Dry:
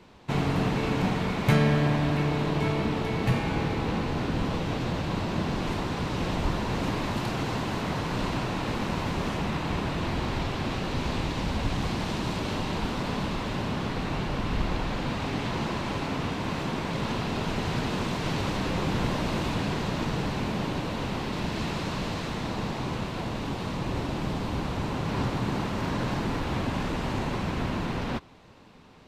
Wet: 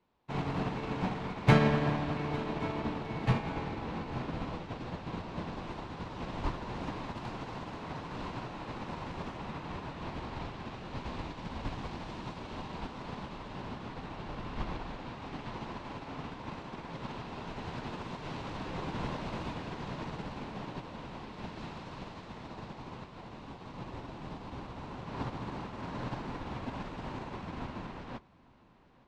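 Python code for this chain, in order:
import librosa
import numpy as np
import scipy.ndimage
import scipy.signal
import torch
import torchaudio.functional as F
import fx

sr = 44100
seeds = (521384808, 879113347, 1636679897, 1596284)

p1 = fx.peak_eq(x, sr, hz=920.0, db=4.0, octaves=0.95)
p2 = fx.hum_notches(p1, sr, base_hz=50, count=4)
p3 = 10.0 ** (-21.5 / 20.0) * np.tanh(p2 / 10.0 ** (-21.5 / 20.0))
p4 = p2 + (p3 * 10.0 ** (-10.0 / 20.0))
p5 = fx.air_absorb(p4, sr, metres=66.0)
p6 = p5 + fx.echo_feedback(p5, sr, ms=860, feedback_pct=54, wet_db=-10.5, dry=0)
y = fx.upward_expand(p6, sr, threshold_db=-34.0, expansion=2.5)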